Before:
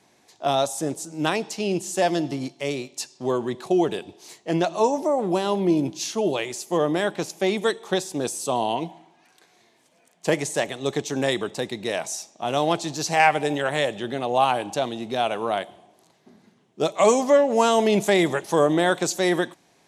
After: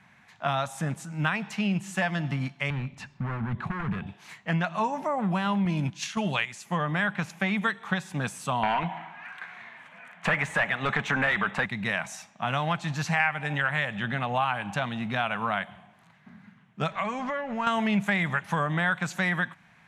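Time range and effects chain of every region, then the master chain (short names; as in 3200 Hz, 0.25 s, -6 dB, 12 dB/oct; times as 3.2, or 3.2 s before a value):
2.7–4.07 RIAA curve playback + compressor 2:1, threshold -29 dBFS + hard clip -28 dBFS
5.65–6.65 LPF 9100 Hz + gate -30 dBFS, range -7 dB + high shelf 3500 Hz +11 dB
8.63–11.66 bell 5100 Hz -4.5 dB 0.91 oct + overdrive pedal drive 21 dB, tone 2100 Hz, clips at -7 dBFS
16.91–17.67 G.711 law mismatch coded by mu + LPF 5500 Hz + compressor 2.5:1, threshold -29 dBFS
whole clip: EQ curve 200 Hz 0 dB, 350 Hz -23 dB, 1500 Hz +3 dB, 2400 Hz -1 dB, 4900 Hz -18 dB; compressor 3:1, threshold -32 dBFS; gain +7.5 dB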